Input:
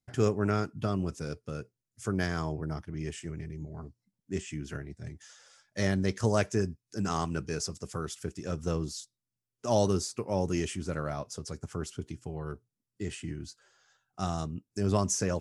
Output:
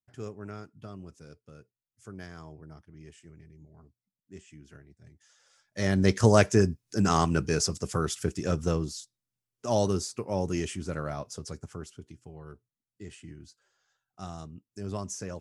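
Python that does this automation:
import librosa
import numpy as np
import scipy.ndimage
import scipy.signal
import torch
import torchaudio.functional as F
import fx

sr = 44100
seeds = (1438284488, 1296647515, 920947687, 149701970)

y = fx.gain(x, sr, db=fx.line((5.11, -13.0), (5.79, -1.0), (6.07, 7.0), (8.46, 7.0), (8.98, 0.0), (11.52, 0.0), (11.98, -8.0)))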